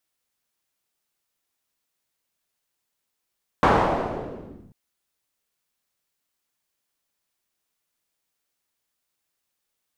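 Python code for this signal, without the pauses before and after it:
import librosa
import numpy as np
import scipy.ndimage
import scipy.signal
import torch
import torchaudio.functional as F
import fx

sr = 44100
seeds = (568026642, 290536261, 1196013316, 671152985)

y = fx.riser_noise(sr, seeds[0], length_s=1.09, colour='white', kind='lowpass', start_hz=1000.0, end_hz=150.0, q=1.4, swell_db=-27.5, law='linear')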